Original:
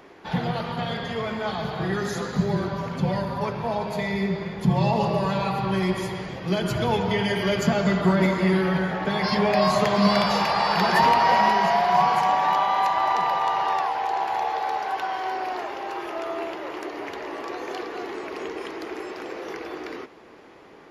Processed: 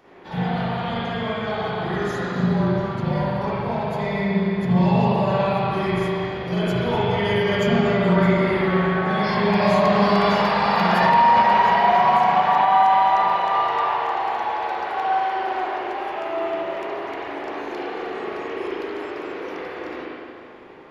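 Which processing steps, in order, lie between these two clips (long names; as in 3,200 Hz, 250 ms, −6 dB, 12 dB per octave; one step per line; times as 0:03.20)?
spring reverb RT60 2.1 s, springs 39/56 ms, chirp 35 ms, DRR −10 dB
boost into a limiter −0.5 dB
level −6.5 dB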